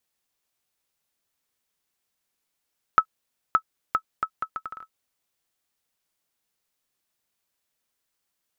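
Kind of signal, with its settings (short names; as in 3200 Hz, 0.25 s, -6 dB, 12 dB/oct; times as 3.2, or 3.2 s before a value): bouncing ball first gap 0.57 s, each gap 0.7, 1300 Hz, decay 72 ms -5 dBFS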